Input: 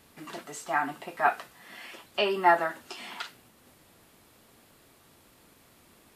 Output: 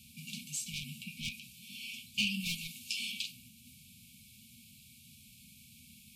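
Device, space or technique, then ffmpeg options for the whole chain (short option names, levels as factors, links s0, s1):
one-band saturation: -filter_complex "[0:a]highpass=57,asettb=1/sr,asplit=3[s0][s1][s2];[s0]atrim=end=1.034[s3];[s1]atrim=start=1.03:end=1.53,asetpts=PTS-STARTPTS,afade=t=in:d=0.004:c=qsin,afade=t=out:st=0.496:d=0.004:c=qsin,acrossover=split=3100[s4][s5];[s5]acompressor=threshold=0.002:ratio=4:attack=1:release=60[s6];[s4][s6]amix=inputs=2:normalize=0[s7];[s2]atrim=start=1.526[s8];[s3][s7]acrossfade=d=0.004:c1=hsin:c2=qsin[s9];[s9][s8]acrossfade=d=0.004:c1=qsin:c2=hsin,asettb=1/sr,asplit=3[s10][s11][s12];[s10]atrim=end=2.404[s13];[s11]atrim=start=2.4:end=3.12,asetpts=PTS-STARTPTS,afade=t=in:d=0.004:c=qsin,afade=t=out:st=0.716:d=0.004:c=qsin,tiltshelf=f=1200:g=-3.5[s14];[s12]atrim=start=3.116[s15];[s13][s14]acrossfade=d=0.004:c1=hsin:c2=qsin[s16];[s16][s15]acrossfade=d=0.004:c1=qsin:c2=hsin,acrossover=split=440|4800[s17][s18][s19];[s18]asoftclip=type=tanh:threshold=0.0316[s20];[s17][s20][s19]amix=inputs=3:normalize=0,afftfilt=real='re*(1-between(b*sr/4096,250,2200))':imag='im*(1-between(b*sr/4096,250,2200))':win_size=4096:overlap=0.75,volume=1.68"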